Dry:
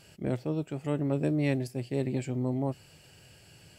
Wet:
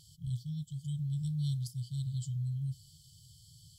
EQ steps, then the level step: brick-wall FIR band-stop 170–3000 Hz; 0.0 dB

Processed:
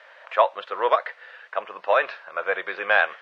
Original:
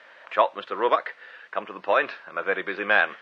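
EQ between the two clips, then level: resonant low shelf 390 Hz -11 dB, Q 1.5; 0.0 dB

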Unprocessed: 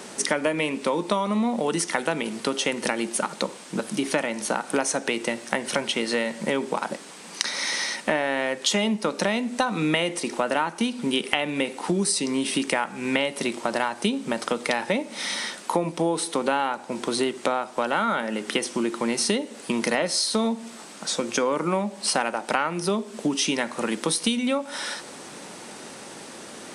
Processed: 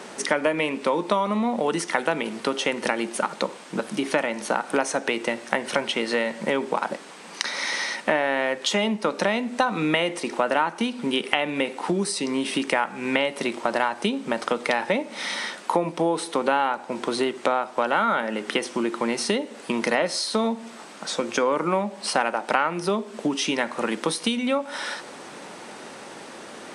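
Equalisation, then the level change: low shelf 320 Hz -7.5 dB; high shelf 4100 Hz -11.5 dB; +4.0 dB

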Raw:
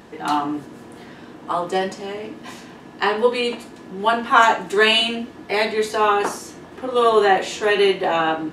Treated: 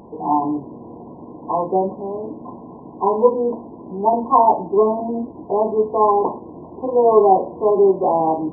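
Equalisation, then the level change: brick-wall FIR low-pass 1100 Hz; +3.5 dB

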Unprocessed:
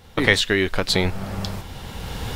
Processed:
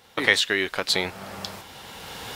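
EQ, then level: HPF 590 Hz 6 dB/oct; -1.0 dB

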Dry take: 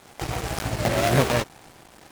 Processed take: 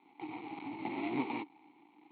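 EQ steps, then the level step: vowel filter u; HPF 170 Hz 12 dB/oct; Chebyshev low-pass 4300 Hz, order 10; 0.0 dB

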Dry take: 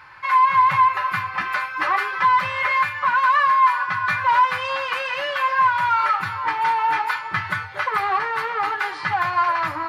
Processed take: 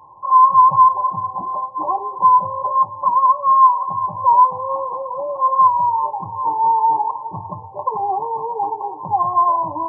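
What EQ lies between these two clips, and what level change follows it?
brick-wall FIR low-pass 1100 Hz; low shelf 110 Hz -10.5 dB; +5.5 dB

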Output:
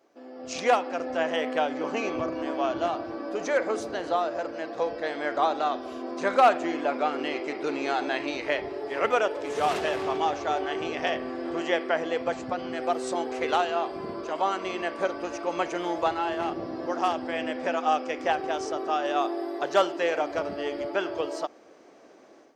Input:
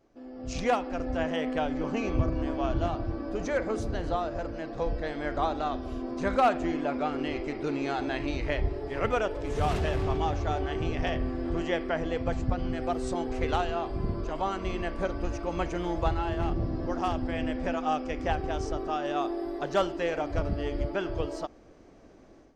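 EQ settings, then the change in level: HPF 390 Hz 12 dB/oct; +5.0 dB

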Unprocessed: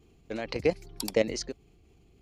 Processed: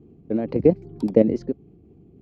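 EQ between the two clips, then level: band-pass 280 Hz, Q 0.57; bell 220 Hz +8.5 dB 2.8 oct; low shelf 330 Hz +6.5 dB; +2.5 dB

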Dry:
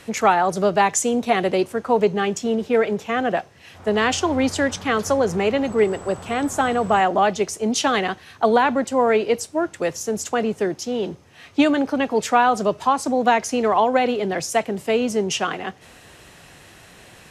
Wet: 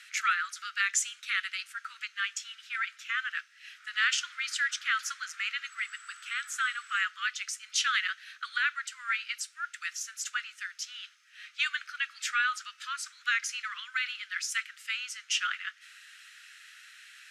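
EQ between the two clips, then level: steep high-pass 1300 Hz 96 dB/oct; high shelf 9200 Hz -12 dB; -2.0 dB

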